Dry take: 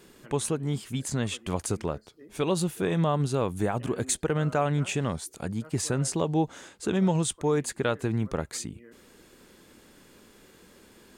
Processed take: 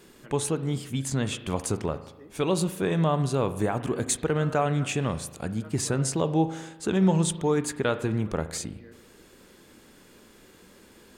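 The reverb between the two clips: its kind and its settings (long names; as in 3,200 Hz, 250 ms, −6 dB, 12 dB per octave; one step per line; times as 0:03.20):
spring reverb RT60 1 s, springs 37 ms, chirp 55 ms, DRR 11.5 dB
level +1 dB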